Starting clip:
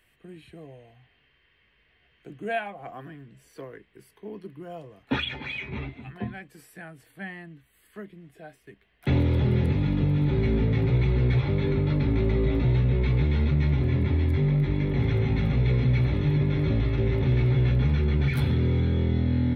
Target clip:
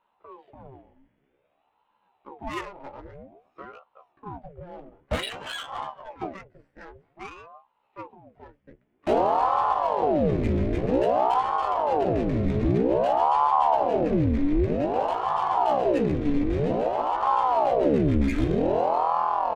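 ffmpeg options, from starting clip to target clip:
-filter_complex "[0:a]asplit=2[s0][s1];[s1]adelay=14,volume=0.668[s2];[s0][s2]amix=inputs=2:normalize=0,adynamicsmooth=sensitivity=6:basefreq=980,aeval=exprs='val(0)*sin(2*PI*540*n/s+540*0.75/0.52*sin(2*PI*0.52*n/s))':c=same"

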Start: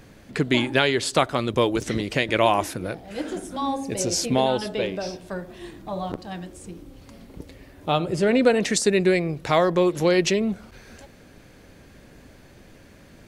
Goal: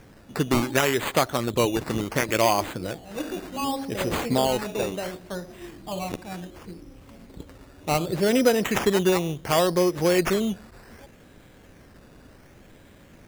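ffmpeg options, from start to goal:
-af "acrusher=samples=11:mix=1:aa=0.000001:lfo=1:lforange=6.6:lforate=0.68,volume=0.841"

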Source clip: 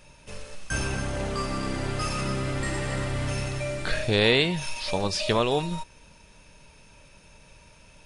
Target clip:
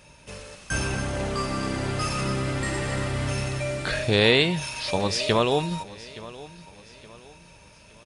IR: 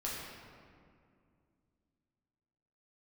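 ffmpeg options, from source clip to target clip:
-filter_complex "[0:a]highpass=48,asplit=2[s0][s1];[s1]aecho=0:1:870|1740|2610:0.119|0.0452|0.0172[s2];[s0][s2]amix=inputs=2:normalize=0,volume=1.26"

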